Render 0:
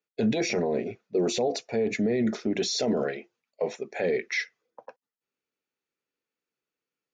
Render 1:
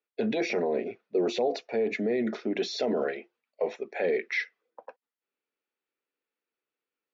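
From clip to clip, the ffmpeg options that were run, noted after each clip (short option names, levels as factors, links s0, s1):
-filter_complex "[0:a]acrossover=split=220 4400:gain=0.126 1 0.0631[s0][s1][s2];[s0][s1][s2]amix=inputs=3:normalize=0"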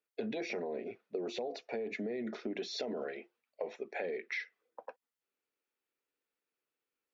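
-af "acompressor=threshold=0.02:ratio=6,volume=0.841"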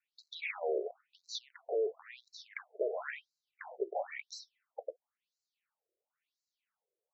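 -af "volume=42.2,asoftclip=hard,volume=0.0237,afftfilt=real='re*between(b*sr/1024,470*pow(5600/470,0.5+0.5*sin(2*PI*0.97*pts/sr))/1.41,470*pow(5600/470,0.5+0.5*sin(2*PI*0.97*pts/sr))*1.41)':imag='im*between(b*sr/1024,470*pow(5600/470,0.5+0.5*sin(2*PI*0.97*pts/sr))/1.41,470*pow(5600/470,0.5+0.5*sin(2*PI*0.97*pts/sr))*1.41)':win_size=1024:overlap=0.75,volume=2.37"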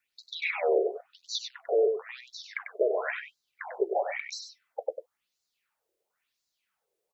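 -af "aecho=1:1:96:0.422,volume=2.51"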